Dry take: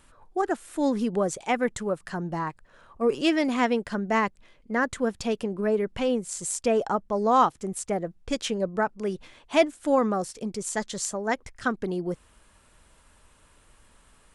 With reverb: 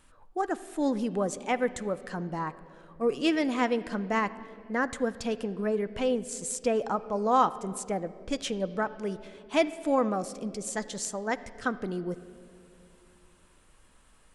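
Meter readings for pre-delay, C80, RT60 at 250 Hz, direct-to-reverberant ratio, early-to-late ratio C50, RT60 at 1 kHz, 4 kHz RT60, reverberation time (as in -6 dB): 4 ms, 16.5 dB, 3.4 s, 11.5 dB, 15.5 dB, 2.0 s, 1.7 s, 2.6 s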